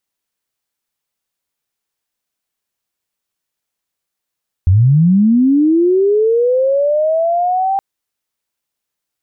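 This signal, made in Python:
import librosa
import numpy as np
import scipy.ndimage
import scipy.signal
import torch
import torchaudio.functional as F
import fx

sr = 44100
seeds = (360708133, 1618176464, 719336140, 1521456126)

y = fx.chirp(sr, length_s=3.12, from_hz=84.0, to_hz=790.0, law='linear', from_db=-6.0, to_db=-12.5)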